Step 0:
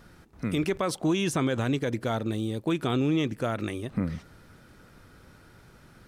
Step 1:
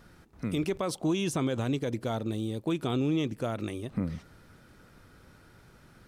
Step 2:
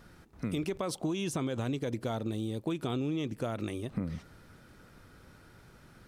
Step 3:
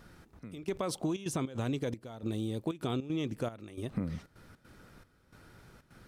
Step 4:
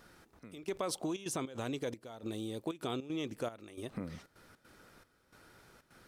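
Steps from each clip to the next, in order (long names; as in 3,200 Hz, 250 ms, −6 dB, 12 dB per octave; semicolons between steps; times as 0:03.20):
dynamic equaliser 1,700 Hz, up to −6 dB, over −49 dBFS, Q 1.6; level −2.5 dB
downward compressor, threshold −29 dBFS, peak gain reduction 6 dB
gate pattern "xxxx...xxxxx.xx." 155 BPM −12 dB
bass and treble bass −9 dB, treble +2 dB; level −1 dB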